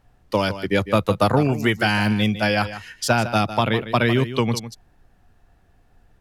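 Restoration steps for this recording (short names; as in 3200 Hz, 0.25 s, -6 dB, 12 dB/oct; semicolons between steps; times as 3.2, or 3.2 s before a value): expander -49 dBFS, range -21 dB; inverse comb 0.154 s -12.5 dB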